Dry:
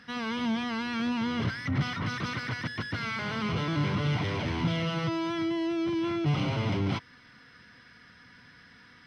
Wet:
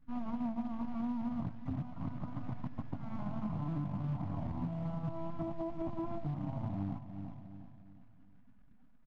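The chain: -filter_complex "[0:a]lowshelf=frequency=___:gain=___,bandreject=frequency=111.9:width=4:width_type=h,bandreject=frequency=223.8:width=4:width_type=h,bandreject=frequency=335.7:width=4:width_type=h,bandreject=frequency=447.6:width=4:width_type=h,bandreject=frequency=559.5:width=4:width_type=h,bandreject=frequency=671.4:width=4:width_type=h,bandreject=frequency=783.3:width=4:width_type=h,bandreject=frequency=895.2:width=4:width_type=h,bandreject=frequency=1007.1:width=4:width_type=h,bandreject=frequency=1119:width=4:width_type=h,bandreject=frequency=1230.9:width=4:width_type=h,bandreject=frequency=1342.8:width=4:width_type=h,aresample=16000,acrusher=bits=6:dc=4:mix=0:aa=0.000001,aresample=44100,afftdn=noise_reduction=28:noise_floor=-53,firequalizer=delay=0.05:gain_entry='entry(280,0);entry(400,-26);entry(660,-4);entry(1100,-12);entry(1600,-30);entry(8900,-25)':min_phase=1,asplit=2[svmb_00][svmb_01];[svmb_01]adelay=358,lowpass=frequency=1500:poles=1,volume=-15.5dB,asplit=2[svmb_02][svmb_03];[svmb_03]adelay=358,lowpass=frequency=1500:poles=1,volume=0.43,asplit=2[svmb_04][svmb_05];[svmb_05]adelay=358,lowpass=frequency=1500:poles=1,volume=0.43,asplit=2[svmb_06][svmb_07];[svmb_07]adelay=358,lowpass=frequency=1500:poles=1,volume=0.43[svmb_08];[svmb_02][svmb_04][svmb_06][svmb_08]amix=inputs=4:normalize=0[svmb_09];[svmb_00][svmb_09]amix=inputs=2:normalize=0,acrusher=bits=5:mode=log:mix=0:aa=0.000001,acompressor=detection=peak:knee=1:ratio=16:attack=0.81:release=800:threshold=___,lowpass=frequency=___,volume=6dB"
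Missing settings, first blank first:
280, -7, -36dB, 2100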